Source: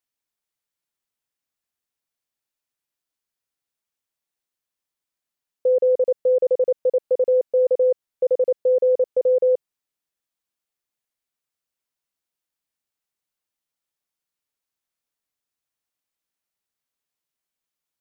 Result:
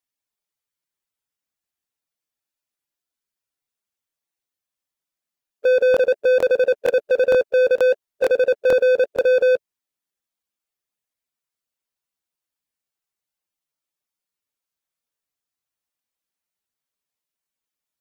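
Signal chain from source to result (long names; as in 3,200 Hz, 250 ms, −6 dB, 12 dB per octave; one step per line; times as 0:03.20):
spectral magnitudes quantised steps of 15 dB
leveller curve on the samples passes 2
in parallel at −7 dB: soft clipping −30 dBFS, distortion −9 dB
on the sum: regular buffer underruns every 0.46 s, samples 1,024, repeat, from 0:00.40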